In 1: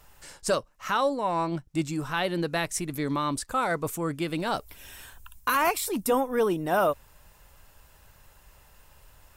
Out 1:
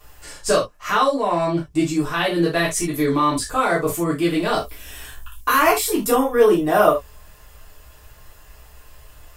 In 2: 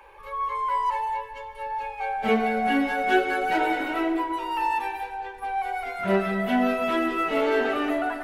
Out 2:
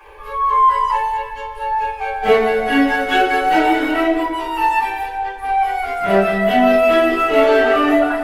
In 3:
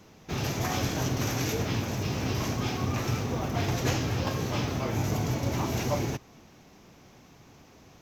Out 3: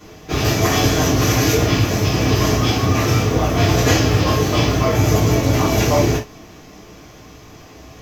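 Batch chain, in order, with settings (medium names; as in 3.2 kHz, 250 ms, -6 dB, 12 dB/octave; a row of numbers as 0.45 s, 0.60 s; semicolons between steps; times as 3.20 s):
gated-style reverb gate 100 ms falling, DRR -7 dB; peak normalisation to -2 dBFS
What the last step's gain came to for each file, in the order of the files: +0.5 dB, +2.0 dB, +5.5 dB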